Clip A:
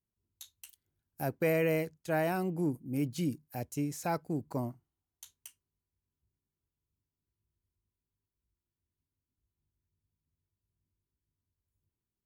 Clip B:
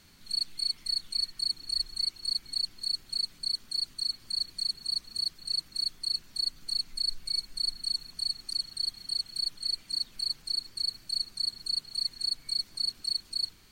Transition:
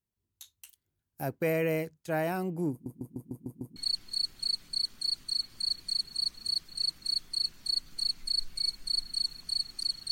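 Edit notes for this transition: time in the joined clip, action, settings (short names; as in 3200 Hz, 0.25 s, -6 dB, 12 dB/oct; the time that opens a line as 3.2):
clip A
2.71 stutter in place 0.15 s, 7 plays
3.76 switch to clip B from 2.46 s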